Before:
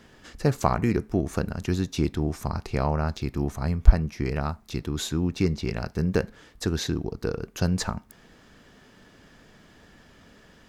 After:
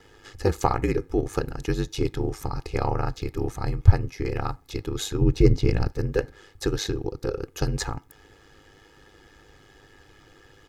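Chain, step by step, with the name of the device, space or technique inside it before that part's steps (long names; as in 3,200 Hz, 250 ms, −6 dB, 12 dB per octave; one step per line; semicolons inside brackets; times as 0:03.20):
0:05.21–0:05.92: low-shelf EQ 340 Hz +11 dB
ring-modulated robot voice (ring modulation 51 Hz; comb filter 2.4 ms, depth 72%)
level +1.5 dB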